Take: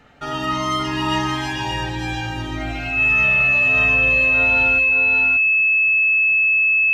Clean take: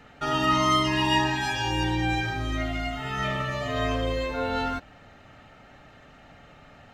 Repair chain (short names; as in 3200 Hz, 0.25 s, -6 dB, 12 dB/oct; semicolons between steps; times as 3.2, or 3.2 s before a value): notch 2600 Hz, Q 30; inverse comb 0.58 s -4.5 dB